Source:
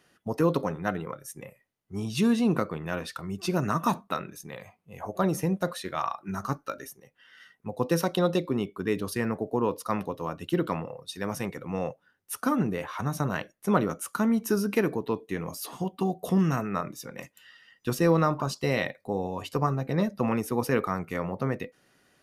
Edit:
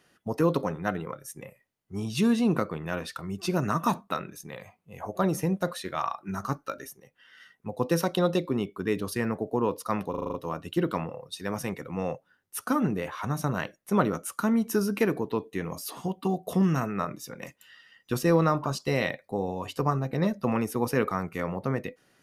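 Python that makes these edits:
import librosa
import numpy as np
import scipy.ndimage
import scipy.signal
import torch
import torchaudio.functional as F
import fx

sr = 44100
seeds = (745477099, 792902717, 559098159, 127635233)

y = fx.edit(x, sr, fx.stutter(start_s=10.1, slice_s=0.04, count=7), tone=tone)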